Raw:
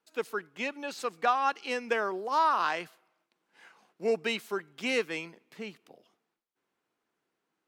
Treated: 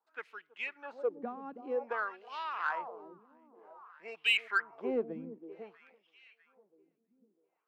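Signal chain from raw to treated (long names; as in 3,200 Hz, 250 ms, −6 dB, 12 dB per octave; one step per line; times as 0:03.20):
high-shelf EQ 2,400 Hz −11 dB
delay that swaps between a low-pass and a high-pass 324 ms, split 970 Hz, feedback 58%, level −11 dB
LFO wah 0.53 Hz 210–3,000 Hz, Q 3.2
0:04.16–0:05.12: parametric band 3,400 Hz → 590 Hz +13.5 dB 0.92 octaves
in parallel at −6 dB: soft clipping −31 dBFS, distortion −11 dB
on the sum: level +1.5 dB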